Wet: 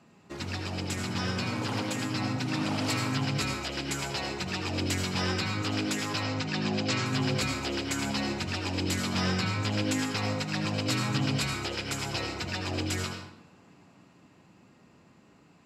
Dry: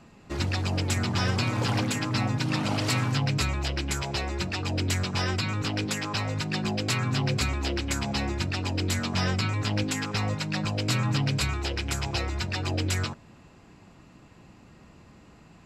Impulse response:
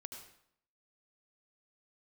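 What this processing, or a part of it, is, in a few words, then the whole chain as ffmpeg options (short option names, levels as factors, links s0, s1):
far laptop microphone: -filter_complex "[1:a]atrim=start_sample=2205[s0];[0:a][s0]afir=irnorm=-1:irlink=0,highpass=130,dynaudnorm=f=440:g=13:m=1.5,asettb=1/sr,asplit=3[s1][s2][s3];[s1]atrim=end=6.234[s4];[s2]atrim=start=6.23:end=7.06,asetpts=PTS-STARTPTS,afade=t=in:d=0.004:c=qsin,afade=t=out:st=0.826:d=0.004:c=qsin,lowpass=f=7100:w=0.5412,lowpass=f=7100:w=1.3066[s5];[s3]atrim=start=7.056[s6];[s4][s5]acrossfade=d=0.004:c1=hsin:c2=qsin[s7];[s7][s6]acrossfade=d=0.004:c1=qsin:c2=hsin"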